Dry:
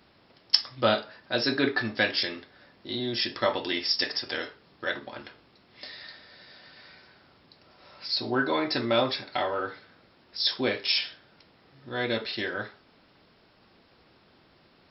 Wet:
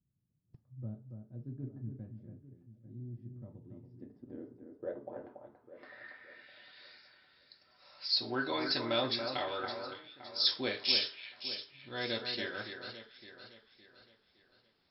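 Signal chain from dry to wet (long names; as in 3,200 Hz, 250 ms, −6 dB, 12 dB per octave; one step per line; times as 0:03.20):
wrap-around overflow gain 6.5 dB
noise reduction from a noise print of the clip's start 10 dB
low-pass filter sweep 140 Hz → 4,800 Hz, 0:03.72–0:07.00
on a send: delay that swaps between a low-pass and a high-pass 282 ms, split 2,200 Hz, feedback 63%, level −6.5 dB
on the sum: level −9 dB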